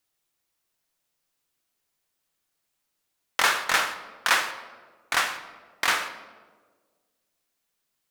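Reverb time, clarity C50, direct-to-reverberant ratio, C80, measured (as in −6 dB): 1.6 s, 10.5 dB, 8.0 dB, 12.5 dB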